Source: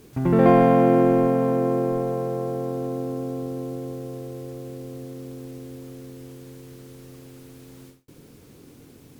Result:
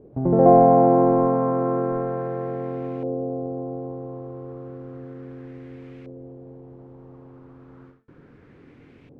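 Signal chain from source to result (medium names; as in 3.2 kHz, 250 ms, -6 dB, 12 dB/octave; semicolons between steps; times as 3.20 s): de-hum 221.2 Hz, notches 31; LFO low-pass saw up 0.33 Hz 570–2400 Hz; trim -1.5 dB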